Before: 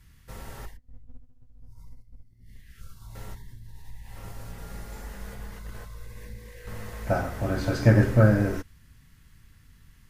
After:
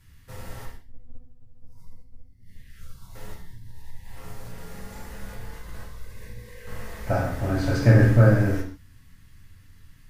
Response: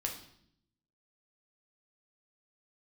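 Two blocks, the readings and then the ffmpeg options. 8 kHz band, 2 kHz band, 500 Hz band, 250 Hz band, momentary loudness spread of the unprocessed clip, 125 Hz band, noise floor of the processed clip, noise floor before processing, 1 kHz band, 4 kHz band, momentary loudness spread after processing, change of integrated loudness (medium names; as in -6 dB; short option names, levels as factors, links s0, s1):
+1.0 dB, +2.0 dB, +1.0 dB, +1.0 dB, 23 LU, +3.5 dB, -52 dBFS, -56 dBFS, +1.0 dB, +1.5 dB, 21 LU, +3.0 dB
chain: -filter_complex "[1:a]atrim=start_sample=2205,afade=t=out:st=0.2:d=0.01,atrim=end_sample=9261,asetrate=42777,aresample=44100[s0];[0:a][s0]afir=irnorm=-1:irlink=0"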